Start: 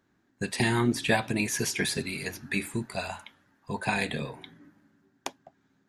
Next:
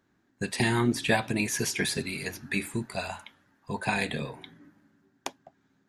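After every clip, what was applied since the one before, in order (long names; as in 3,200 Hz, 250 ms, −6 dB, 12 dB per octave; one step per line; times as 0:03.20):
no processing that can be heard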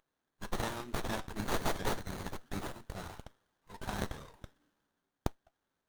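first difference
windowed peak hold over 17 samples
level +4.5 dB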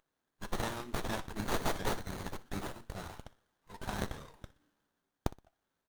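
repeating echo 61 ms, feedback 32%, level −19.5 dB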